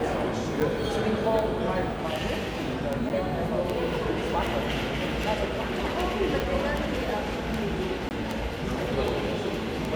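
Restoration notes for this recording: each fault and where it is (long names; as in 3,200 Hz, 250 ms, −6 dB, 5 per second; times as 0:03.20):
scratch tick 78 rpm
0:00.60–0:00.61: drop-out 7.4 ms
0:03.09–0:03.10: drop-out 9.7 ms
0:06.40: click −15 dBFS
0:08.09–0:08.11: drop-out 19 ms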